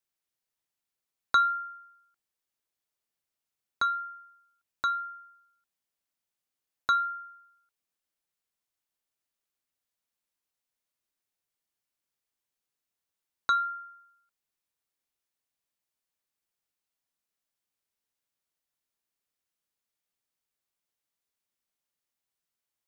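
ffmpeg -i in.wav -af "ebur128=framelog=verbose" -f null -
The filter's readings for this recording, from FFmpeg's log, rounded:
Integrated loudness:
  I:         -29.0 LUFS
  Threshold: -41.3 LUFS
Loudness range:
  LRA:         3.6 LU
  Threshold: -55.8 LUFS
  LRA low:   -37.2 LUFS
  LRA high:  -33.5 LUFS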